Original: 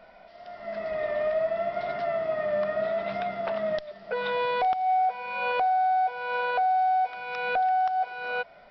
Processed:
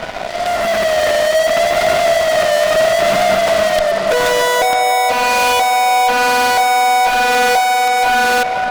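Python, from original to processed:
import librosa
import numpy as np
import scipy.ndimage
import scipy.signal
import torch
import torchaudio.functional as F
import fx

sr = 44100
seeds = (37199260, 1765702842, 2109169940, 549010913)

y = fx.fuzz(x, sr, gain_db=47.0, gate_db=-54.0)
y = fx.hum_notches(y, sr, base_hz=50, count=4)
y = fx.echo_banded(y, sr, ms=500, feedback_pct=60, hz=780.0, wet_db=-4.5)
y = y * 10.0 ** (-1.0 / 20.0)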